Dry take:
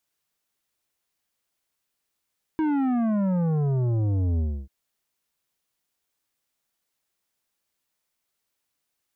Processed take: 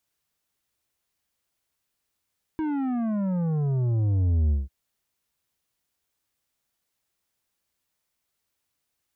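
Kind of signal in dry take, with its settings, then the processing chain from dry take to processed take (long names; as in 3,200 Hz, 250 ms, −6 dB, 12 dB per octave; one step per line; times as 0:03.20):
bass drop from 320 Hz, over 2.09 s, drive 10.5 dB, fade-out 0.29 s, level −22 dB
brickwall limiter −26.5 dBFS
parametric band 68 Hz +7 dB 2 octaves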